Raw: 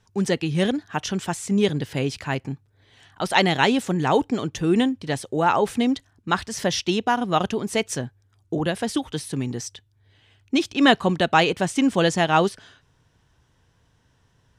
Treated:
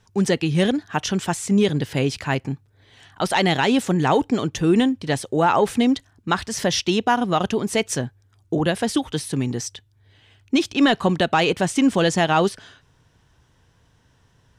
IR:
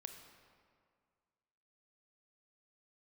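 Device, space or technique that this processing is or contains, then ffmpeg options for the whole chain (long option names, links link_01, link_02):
soft clipper into limiter: -af "asoftclip=type=tanh:threshold=-5dB,alimiter=limit=-12dB:level=0:latency=1:release=104,volume=3.5dB"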